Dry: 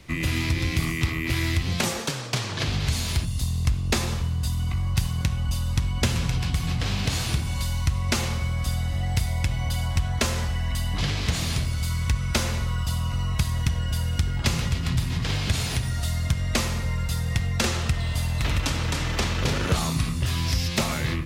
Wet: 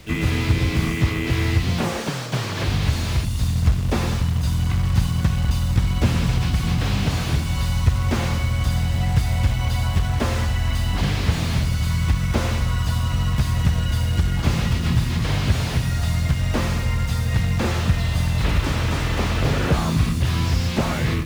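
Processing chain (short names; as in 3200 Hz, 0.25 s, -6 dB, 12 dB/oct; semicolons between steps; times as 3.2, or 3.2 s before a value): harmoniser +5 st -8 dB; short-mantissa float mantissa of 2-bit; slew limiter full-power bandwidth 66 Hz; gain +4.5 dB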